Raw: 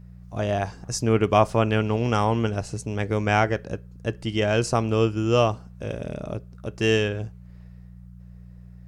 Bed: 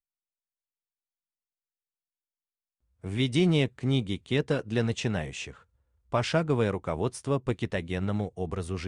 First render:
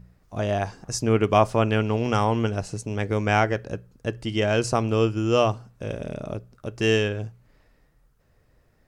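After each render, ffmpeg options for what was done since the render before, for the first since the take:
ffmpeg -i in.wav -af "bandreject=frequency=60:width_type=h:width=4,bandreject=frequency=120:width_type=h:width=4,bandreject=frequency=180:width_type=h:width=4" out.wav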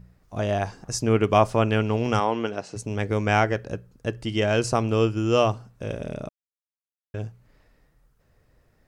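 ffmpeg -i in.wav -filter_complex "[0:a]asplit=3[link_01][link_02][link_03];[link_01]afade=type=out:start_time=2.19:duration=0.02[link_04];[link_02]highpass=260,lowpass=5300,afade=type=in:start_time=2.19:duration=0.02,afade=type=out:start_time=2.75:duration=0.02[link_05];[link_03]afade=type=in:start_time=2.75:duration=0.02[link_06];[link_04][link_05][link_06]amix=inputs=3:normalize=0,asplit=3[link_07][link_08][link_09];[link_07]atrim=end=6.29,asetpts=PTS-STARTPTS,afade=type=out:start_time=6.286:duration=0.004:curve=hsin[link_10];[link_08]atrim=start=6.29:end=7.14,asetpts=PTS-STARTPTS,volume=0[link_11];[link_09]atrim=start=7.14,asetpts=PTS-STARTPTS,afade=type=in:duration=0.004:curve=hsin[link_12];[link_10][link_11][link_12]concat=n=3:v=0:a=1" out.wav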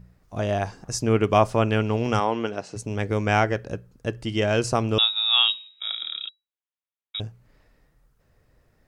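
ffmpeg -i in.wav -filter_complex "[0:a]asettb=1/sr,asplit=3[link_01][link_02][link_03];[link_01]atrim=end=4.984[link_04];[link_02]atrim=start=4.98:end=7.2,asetpts=PTS-STARTPTS,afade=type=in:duration=0.004:curve=qsin,afade=type=out:start_time=2.216:duration=0.004:curve=qsin,lowpass=frequency=3300:width_type=q:width=0.5098,lowpass=frequency=3300:width_type=q:width=0.6013,lowpass=frequency=3300:width_type=q:width=0.9,lowpass=frequency=3300:width_type=q:width=2.563,afreqshift=-3900[link_05];[link_03]atrim=start=7.196[link_06];[link_04][link_05]acrossfade=duration=0.004:curve1=hsin:curve2=qsin[link_07];[link_07][link_06]acrossfade=duration=0.004:curve1=qsin:curve2=hsin" out.wav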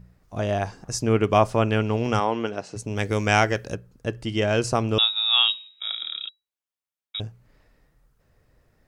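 ffmpeg -i in.wav -filter_complex "[0:a]asettb=1/sr,asplit=3[link_01][link_02][link_03];[link_01]atrim=end=2.964[link_04];[link_02]atrim=start=2.96:end=3.75,asetpts=PTS-STARTPTS,afade=type=in:duration=0.004:curve=qsin,afade=type=out:start_time=0.786:duration=0.004:curve=qsin,highshelf=frequency=3000:gain=11[link_05];[link_03]atrim=start=3.746[link_06];[link_04][link_05]acrossfade=duration=0.004:curve1=hsin:curve2=qsin[link_07];[link_07][link_06]acrossfade=duration=0.004:curve1=qsin:curve2=hsin" out.wav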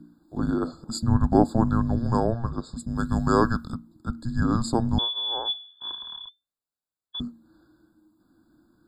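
ffmpeg -i in.wav -af "afreqshift=-350,afftfilt=real='re*eq(mod(floor(b*sr/1024/1700),2),0)':imag='im*eq(mod(floor(b*sr/1024/1700),2),0)':win_size=1024:overlap=0.75" out.wav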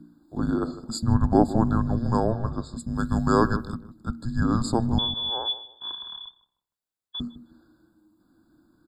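ffmpeg -i in.wav -filter_complex "[0:a]asplit=2[link_01][link_02];[link_02]adelay=155,lowpass=frequency=1100:poles=1,volume=-13.5dB,asplit=2[link_03][link_04];[link_04]adelay=155,lowpass=frequency=1100:poles=1,volume=0.32,asplit=2[link_05][link_06];[link_06]adelay=155,lowpass=frequency=1100:poles=1,volume=0.32[link_07];[link_01][link_03][link_05][link_07]amix=inputs=4:normalize=0" out.wav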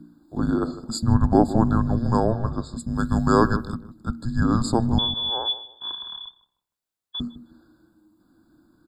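ffmpeg -i in.wav -af "volume=2.5dB,alimiter=limit=-3dB:level=0:latency=1" out.wav

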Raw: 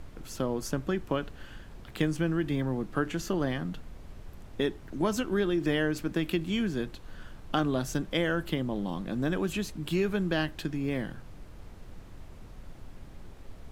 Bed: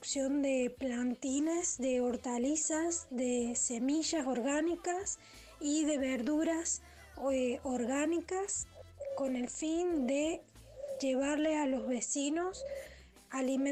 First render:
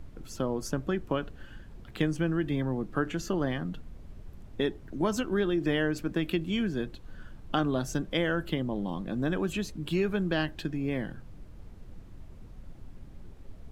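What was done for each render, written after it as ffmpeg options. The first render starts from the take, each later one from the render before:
ffmpeg -i in.wav -af "afftdn=noise_reduction=7:noise_floor=-48" out.wav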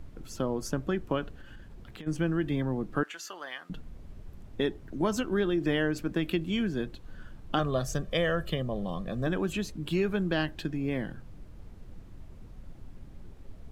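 ffmpeg -i in.wav -filter_complex "[0:a]asplit=3[link_01][link_02][link_03];[link_01]afade=type=out:start_time=1.39:duration=0.02[link_04];[link_02]acompressor=threshold=-41dB:ratio=6:attack=3.2:release=140:knee=1:detection=peak,afade=type=in:start_time=1.39:duration=0.02,afade=type=out:start_time=2.06:duration=0.02[link_05];[link_03]afade=type=in:start_time=2.06:duration=0.02[link_06];[link_04][link_05][link_06]amix=inputs=3:normalize=0,asettb=1/sr,asplit=3[link_07][link_08][link_09];[link_07]atrim=end=3.034[link_10];[link_08]atrim=start=3.03:end=3.7,asetpts=PTS-STARTPTS,afade=type=in:duration=0.004:curve=qsin,afade=type=out:start_time=0.666:duration=0.004:curve=qsin,highpass=1100[link_11];[link_09]atrim=start=3.696[link_12];[link_10][link_11]acrossfade=duration=0.004:curve1=hsin:curve2=qsin[link_13];[link_13][link_12]acrossfade=duration=0.004:curve1=qsin:curve2=hsin,asettb=1/sr,asplit=3[link_14][link_15][link_16];[link_14]atrim=end=7.594[link_17];[link_15]atrim=start=7.59:end=9.27,asetpts=PTS-STARTPTS,afade=type=in:duration=0.004:curve=qsin,afade=type=out:start_time=1.676:duration=0.004:curve=qsin,aecho=1:1:1.7:0.62,atrim=end_sample=74088[link_18];[link_16]atrim=start=9.266[link_19];[link_17][link_18]acrossfade=duration=0.004:curve1=hsin:curve2=qsin[link_20];[link_20][link_19]acrossfade=duration=0.004:curve1=qsin:curve2=hsin" out.wav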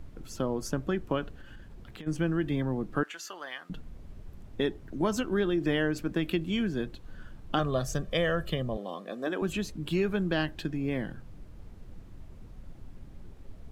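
ffmpeg -i in.wav -filter_complex "[0:a]asettb=1/sr,asplit=3[link_01][link_02][link_03];[link_01]atrim=end=8.774[link_04];[link_02]atrim=start=8.77:end=9.42,asetpts=PTS-STARTPTS,afade=type=in:duration=0.004:curve=qsin,afade=type=out:start_time=0.646:duration=0.004:curve=qsin,highpass=frequency=260:width=0.5412,highpass=frequency=260:width=1.3066[link_05];[link_03]atrim=start=9.416[link_06];[link_04][link_05]acrossfade=duration=0.004:curve1=hsin:curve2=qsin[link_07];[link_07][link_06]acrossfade=duration=0.004:curve1=qsin:curve2=hsin" out.wav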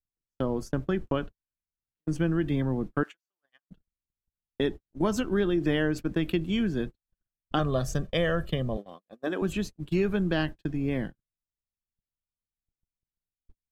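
ffmpeg -i in.wav -af "agate=range=-56dB:threshold=-34dB:ratio=16:detection=peak,lowshelf=frequency=370:gain=3.5" out.wav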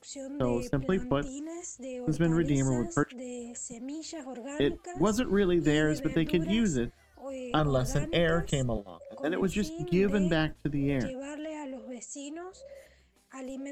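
ffmpeg -i in.wav -i bed.wav -filter_complex "[1:a]volume=-6.5dB[link_01];[0:a][link_01]amix=inputs=2:normalize=0" out.wav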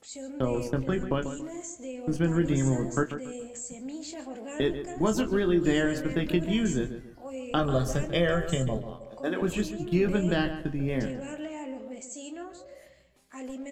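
ffmpeg -i in.wav -filter_complex "[0:a]asplit=2[link_01][link_02];[link_02]adelay=23,volume=-8dB[link_03];[link_01][link_03]amix=inputs=2:normalize=0,asplit=2[link_04][link_05];[link_05]adelay=141,lowpass=frequency=2300:poles=1,volume=-10dB,asplit=2[link_06][link_07];[link_07]adelay=141,lowpass=frequency=2300:poles=1,volume=0.34,asplit=2[link_08][link_09];[link_09]adelay=141,lowpass=frequency=2300:poles=1,volume=0.34,asplit=2[link_10][link_11];[link_11]adelay=141,lowpass=frequency=2300:poles=1,volume=0.34[link_12];[link_06][link_08][link_10][link_12]amix=inputs=4:normalize=0[link_13];[link_04][link_13]amix=inputs=2:normalize=0" out.wav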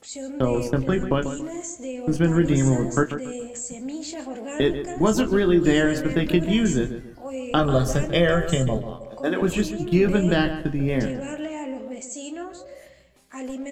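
ffmpeg -i in.wav -af "volume=6dB" out.wav

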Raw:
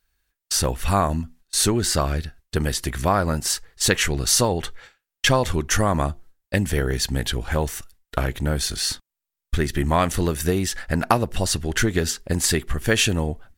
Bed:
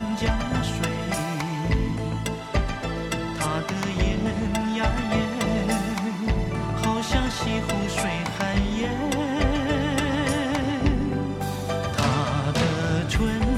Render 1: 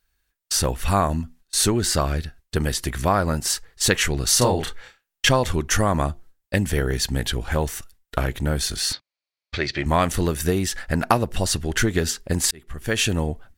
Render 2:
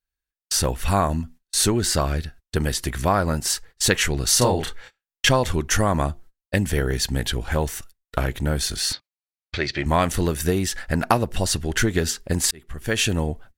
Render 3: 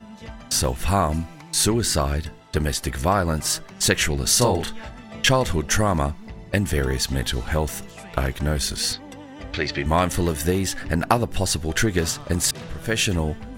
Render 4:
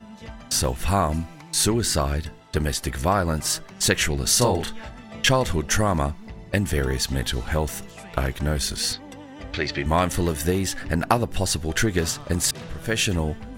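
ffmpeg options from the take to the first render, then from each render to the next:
ffmpeg -i in.wav -filter_complex "[0:a]asettb=1/sr,asplit=3[link_01][link_02][link_03];[link_01]atrim=end=4.384[link_04];[link_02]atrim=start=4.38:end=5.29,asetpts=PTS-STARTPTS,afade=type=in:duration=0.004:curve=qsin,afade=type=out:start_time=0.906:duration=0.004:curve=qsin,asplit=2[link_05][link_06];[link_06]adelay=32,volume=-3dB[link_07];[link_05][link_07]amix=inputs=2:normalize=0,atrim=end_sample=40131[link_08];[link_03]atrim=start=5.286[link_09];[link_04][link_08]acrossfade=duration=0.004:curve1=hsin:curve2=qsin[link_10];[link_10][link_09]acrossfade=duration=0.004:curve1=qsin:curve2=hsin,asettb=1/sr,asplit=3[link_11][link_12][link_13];[link_11]atrim=end=8.934[link_14];[link_12]atrim=start=8.93:end=9.86,asetpts=PTS-STARTPTS,afade=type=in:duration=0.004:curve=qsin,afade=type=out:start_time=0.926:duration=0.004:curve=qsin,highpass=120,equalizer=frequency=170:width_type=q:width=4:gain=-9,equalizer=frequency=240:width_type=q:width=4:gain=-9,equalizer=frequency=410:width_type=q:width=4:gain=-3,equalizer=frequency=590:width_type=q:width=4:gain=7,equalizer=frequency=2300:width_type=q:width=4:gain=9,equalizer=frequency=4400:width_type=q:width=4:gain=10,lowpass=frequency=5700:width=0.5412,lowpass=frequency=5700:width=1.3066[link_15];[link_13]atrim=start=9.856[link_16];[link_14][link_15]acrossfade=duration=0.004:curve1=hsin:curve2=qsin[link_17];[link_17][link_16]acrossfade=duration=0.004:curve1=qsin:curve2=hsin,asplit=2[link_18][link_19];[link_18]atrim=end=12.51,asetpts=PTS-STARTPTS,afade=type=out:start_time=12.506:duration=0.004:curve=hsin[link_20];[link_19]atrim=start=12.51,asetpts=PTS-STARTPTS,afade=type=in:duration=0.65[link_21];[link_20][link_21]concat=n=2:v=0:a=1" out.wav
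ffmpeg -i in.wav -af "agate=range=-16dB:threshold=-41dB:ratio=16:detection=peak,bandreject=frequency=1200:width=29" out.wav
ffmpeg -i in.wav -i bed.wav -filter_complex "[1:a]volume=-15dB[link_01];[0:a][link_01]amix=inputs=2:normalize=0" out.wav
ffmpeg -i in.wav -af "volume=-1dB" out.wav

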